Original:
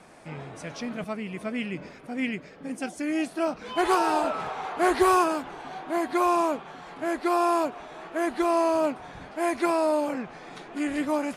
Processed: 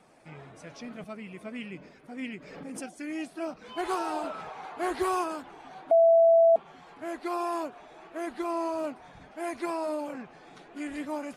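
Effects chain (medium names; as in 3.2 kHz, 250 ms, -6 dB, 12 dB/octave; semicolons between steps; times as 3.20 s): coarse spectral quantiser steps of 15 dB; 2.37–2.88 s: swell ahead of each attack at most 39 dB/s; 5.91–6.56 s: bleep 664 Hz -8 dBFS; trim -7.5 dB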